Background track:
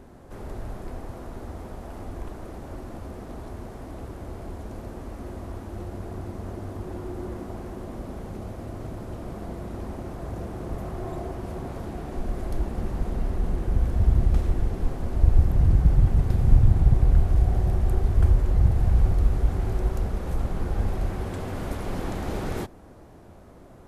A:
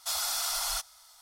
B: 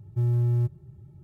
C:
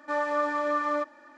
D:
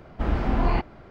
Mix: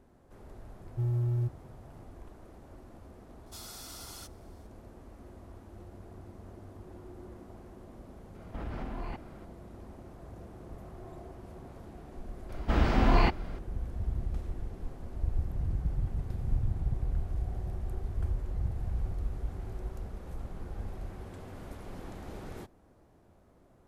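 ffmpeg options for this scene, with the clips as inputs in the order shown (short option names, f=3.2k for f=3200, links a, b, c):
-filter_complex "[4:a]asplit=2[a][b];[0:a]volume=-13.5dB[c];[a]acompressor=threshold=-28dB:ratio=6:attack=3.2:release=140:knee=1:detection=peak[d];[b]highshelf=f=2.9k:g=10[e];[2:a]atrim=end=1.23,asetpts=PTS-STARTPTS,volume=-6dB,afade=t=in:d=0.004:c=hsin,afade=t=out:st=1.226:d=0.004:c=hsin,adelay=810[f];[1:a]atrim=end=1.21,asetpts=PTS-STARTPTS,volume=-15.5dB,afade=t=in:d=0.004:c=hsin,afade=t=out:st=1.206:d=0.004:c=hsin,adelay=3460[g];[d]atrim=end=1.1,asetpts=PTS-STARTPTS,volume=-6dB,afade=t=in:d=0.004:c=hsin,afade=t=out:st=1.096:d=0.004:c=hsin,adelay=8350[h];[e]atrim=end=1.1,asetpts=PTS-STARTPTS,volume=-1dB,afade=t=in:d=0.004:c=hsin,afade=t=out:st=1.096:d=0.004:c=hsin,adelay=12490[i];[c][f][g][h][i]amix=inputs=5:normalize=0"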